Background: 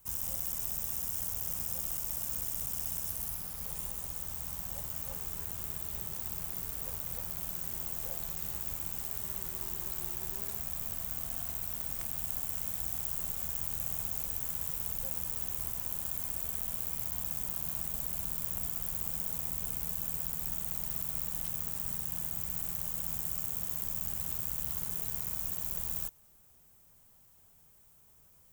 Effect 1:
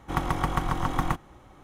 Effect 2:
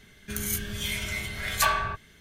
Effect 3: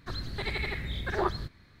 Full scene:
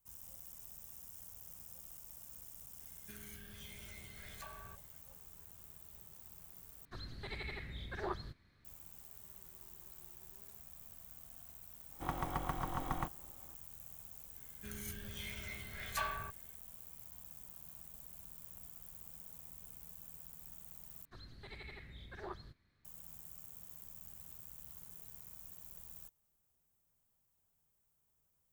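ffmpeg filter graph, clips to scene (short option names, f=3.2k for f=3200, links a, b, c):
-filter_complex "[2:a]asplit=2[a][b];[3:a]asplit=2[c][d];[0:a]volume=-17dB[e];[a]acrossover=split=870|3900[f][g][h];[f]acompressor=threshold=-36dB:ratio=4[i];[g]acompressor=threshold=-41dB:ratio=4[j];[h]acompressor=threshold=-43dB:ratio=4[k];[i][j][k]amix=inputs=3:normalize=0[l];[1:a]equalizer=f=690:w=1.4:g=4.5[m];[b]highshelf=f=3.5k:g=-5[n];[e]asplit=3[o][p][q];[o]atrim=end=6.854[r];[c]atrim=end=1.8,asetpts=PTS-STARTPTS,volume=-11.5dB[s];[p]atrim=start=8.646:end=21.054[t];[d]atrim=end=1.8,asetpts=PTS-STARTPTS,volume=-18dB[u];[q]atrim=start=22.846[v];[l]atrim=end=2.2,asetpts=PTS-STARTPTS,volume=-16.5dB,afade=t=in:d=0.004:c=hsin,afade=t=out:st=2.196:d=0.004:c=hsin,adelay=2800[w];[m]atrim=end=1.63,asetpts=PTS-STARTPTS,volume=-13.5dB,afade=t=in:d=0.004:c=hsin,afade=t=out:st=1.626:d=0.004:c=hsin,adelay=11920[x];[n]atrim=end=2.2,asetpts=PTS-STARTPTS,volume=-13.5dB,afade=t=in:d=0.004:c=hsin,afade=t=out:st=2.196:d=0.004:c=hsin,adelay=14350[y];[r][s]acrossfade=d=0.004:c1=hsin:c2=hsin[z];[z][t]acrossfade=d=0.004:c1=hsin:c2=hsin[aa];[aa][u]acrossfade=d=0.004:c1=hsin:c2=hsin[ab];[ab][v]acrossfade=d=0.004:c1=hsin:c2=hsin[ac];[ac][w][x][y]amix=inputs=4:normalize=0"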